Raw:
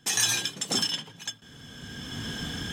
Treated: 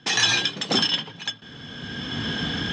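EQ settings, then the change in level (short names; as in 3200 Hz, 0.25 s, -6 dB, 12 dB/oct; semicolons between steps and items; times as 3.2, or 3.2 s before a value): HPF 120 Hz 6 dB/oct; LPF 4800 Hz 24 dB/oct; +8.5 dB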